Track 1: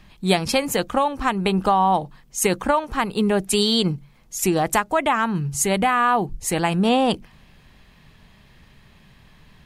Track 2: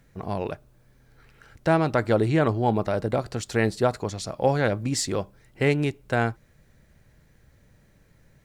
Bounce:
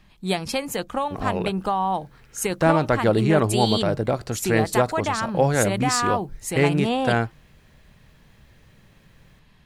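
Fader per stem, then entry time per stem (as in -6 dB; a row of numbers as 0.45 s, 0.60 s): -5.5 dB, +2.0 dB; 0.00 s, 0.95 s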